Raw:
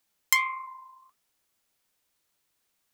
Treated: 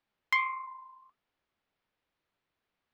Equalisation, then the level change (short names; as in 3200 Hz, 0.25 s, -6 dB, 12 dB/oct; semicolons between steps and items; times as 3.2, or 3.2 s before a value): air absorption 320 m; 0.0 dB